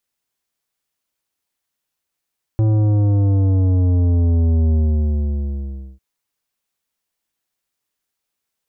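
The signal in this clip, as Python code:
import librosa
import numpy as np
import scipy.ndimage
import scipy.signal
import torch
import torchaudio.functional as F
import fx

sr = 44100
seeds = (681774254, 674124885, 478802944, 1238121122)

y = fx.sub_drop(sr, level_db=-13.5, start_hz=110.0, length_s=3.4, drive_db=11.0, fade_s=1.27, end_hz=65.0)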